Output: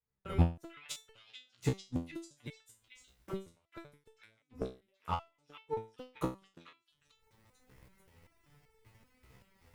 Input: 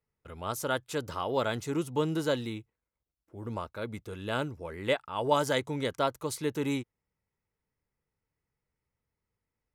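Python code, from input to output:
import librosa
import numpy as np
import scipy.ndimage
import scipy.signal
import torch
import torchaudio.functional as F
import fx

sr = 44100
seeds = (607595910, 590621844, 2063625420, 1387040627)

y = fx.recorder_agc(x, sr, target_db=-14.0, rise_db_per_s=42.0, max_gain_db=30)
y = fx.gate_flip(y, sr, shuts_db=-16.0, range_db=-41)
y = fx.leveller(y, sr, passes=2)
y = fx.bass_treble(y, sr, bass_db=3, treble_db=-4)
y = fx.echo_stepped(y, sr, ms=442, hz=2500.0, octaves=0.7, feedback_pct=70, wet_db=-1.0)
y = fx.resonator_held(y, sr, hz=5.2, low_hz=64.0, high_hz=440.0)
y = y * librosa.db_to_amplitude(1.0)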